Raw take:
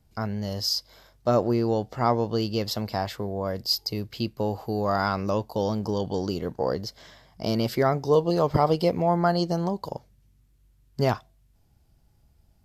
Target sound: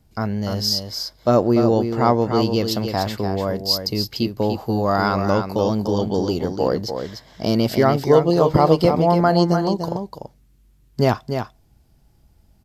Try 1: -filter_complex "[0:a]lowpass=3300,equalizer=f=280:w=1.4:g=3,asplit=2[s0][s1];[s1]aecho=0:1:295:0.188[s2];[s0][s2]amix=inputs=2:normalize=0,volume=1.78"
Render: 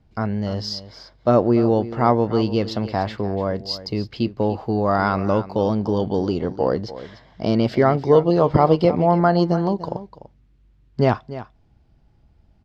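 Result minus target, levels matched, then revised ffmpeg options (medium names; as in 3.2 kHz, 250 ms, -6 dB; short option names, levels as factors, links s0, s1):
4 kHz band -7.0 dB; echo-to-direct -7.5 dB
-filter_complex "[0:a]equalizer=f=280:w=1.4:g=3,asplit=2[s0][s1];[s1]aecho=0:1:295:0.447[s2];[s0][s2]amix=inputs=2:normalize=0,volume=1.78"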